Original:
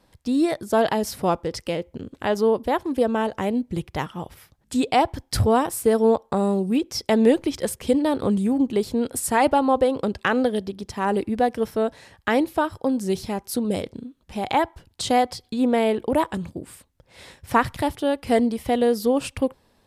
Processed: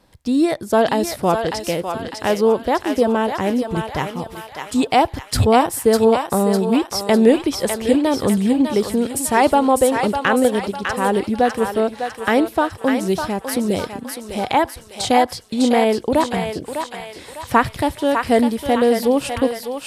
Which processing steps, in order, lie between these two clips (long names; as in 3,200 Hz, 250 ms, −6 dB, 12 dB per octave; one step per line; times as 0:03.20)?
feedback echo with a high-pass in the loop 602 ms, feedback 56%, high-pass 790 Hz, level −4 dB
level +4 dB